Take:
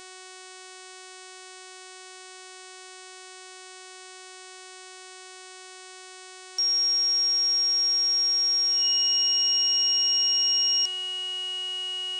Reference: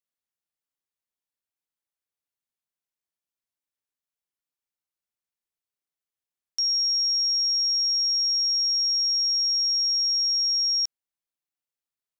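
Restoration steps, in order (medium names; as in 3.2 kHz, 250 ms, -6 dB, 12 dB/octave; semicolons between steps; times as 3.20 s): de-hum 371.8 Hz, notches 25; band-stop 2.9 kHz, Q 30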